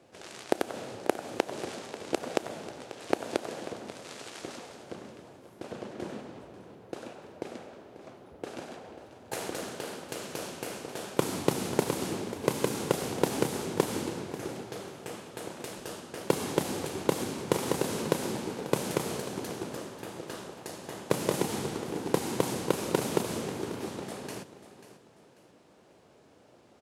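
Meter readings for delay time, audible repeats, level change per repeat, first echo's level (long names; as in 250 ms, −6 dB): 540 ms, 3, −10.0 dB, −14.5 dB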